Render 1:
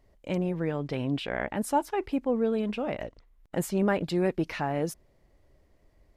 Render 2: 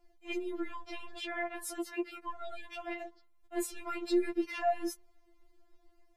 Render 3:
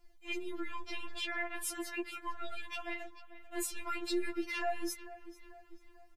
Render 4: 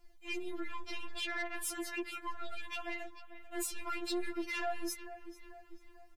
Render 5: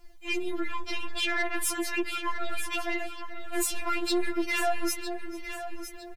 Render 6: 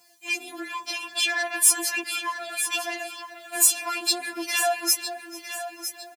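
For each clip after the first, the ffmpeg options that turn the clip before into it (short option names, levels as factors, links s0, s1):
-filter_complex "[0:a]acrossover=split=380|1200[s0][s1][s2];[s0]asoftclip=type=tanh:threshold=0.015[s3];[s3][s1][s2]amix=inputs=3:normalize=0,afftfilt=real='re*4*eq(mod(b,16),0)':imag='im*4*eq(mod(b,16),0)':win_size=2048:overlap=0.75"
-filter_complex "[0:a]equalizer=f=500:t=o:w=1.2:g=-14,asplit=2[s0][s1];[s1]alimiter=level_in=3.98:limit=0.0631:level=0:latency=1:release=213,volume=0.251,volume=0.708[s2];[s0][s2]amix=inputs=2:normalize=0,asplit=2[s3][s4];[s4]adelay=443,lowpass=f=3500:p=1,volume=0.168,asplit=2[s5][s6];[s6]adelay=443,lowpass=f=3500:p=1,volume=0.5,asplit=2[s7][s8];[s8]adelay=443,lowpass=f=3500:p=1,volume=0.5,asplit=2[s9][s10];[s10]adelay=443,lowpass=f=3500:p=1,volume=0.5,asplit=2[s11][s12];[s12]adelay=443,lowpass=f=3500:p=1,volume=0.5[s13];[s3][s5][s7][s9][s11][s13]amix=inputs=6:normalize=0"
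-af "asoftclip=type=tanh:threshold=0.0266,volume=1.19"
-af "aecho=1:1:957|1914|2871:0.282|0.0902|0.0289,volume=2.82"
-af "highpass=f=130:w=0.5412,highpass=f=130:w=1.3066,bass=f=250:g=-7,treble=f=4000:g=11,aecho=1:1:7:0.79"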